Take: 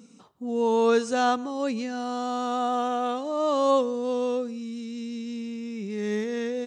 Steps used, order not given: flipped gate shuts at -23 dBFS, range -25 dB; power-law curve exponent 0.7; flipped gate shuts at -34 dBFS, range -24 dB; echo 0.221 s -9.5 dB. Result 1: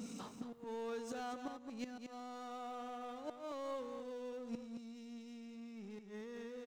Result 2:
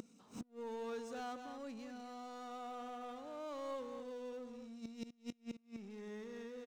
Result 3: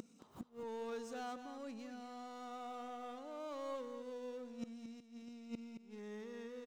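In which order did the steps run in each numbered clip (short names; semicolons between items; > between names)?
first flipped gate > second flipped gate > echo > power-law curve; echo > power-law curve > first flipped gate > second flipped gate; power-law curve > first flipped gate > second flipped gate > echo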